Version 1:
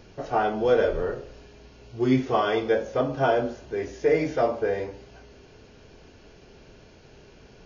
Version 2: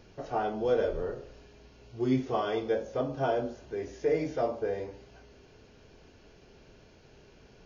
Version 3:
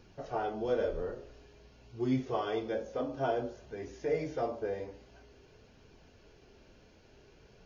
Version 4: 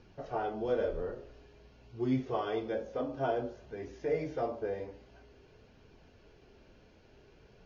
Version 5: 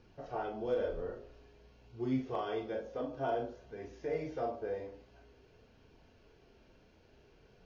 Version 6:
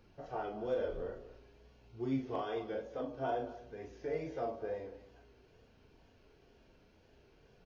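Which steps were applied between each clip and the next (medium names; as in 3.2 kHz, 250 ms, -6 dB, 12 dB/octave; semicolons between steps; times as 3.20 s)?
dynamic bell 1.8 kHz, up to -5 dB, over -40 dBFS, Q 0.82; trim -5.5 dB
flange 0.51 Hz, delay 0.7 ms, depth 3.4 ms, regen -62%; trim +1 dB
distance through air 92 m
hard clipper -21.5 dBFS, distortion -37 dB; reverberation, pre-delay 34 ms, DRR 5.5 dB; trim -4 dB
wow and flutter 49 cents; delay 221 ms -16 dB; trim -1.5 dB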